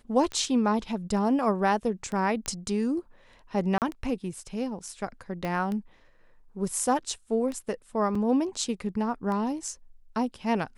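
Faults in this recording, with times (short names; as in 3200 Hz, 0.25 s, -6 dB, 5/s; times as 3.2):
tick 33 1/3 rpm -22 dBFS
2.46 pop -16 dBFS
3.78–3.82 gap 38 ms
5.45 pop -19 dBFS
8.15 gap 4.1 ms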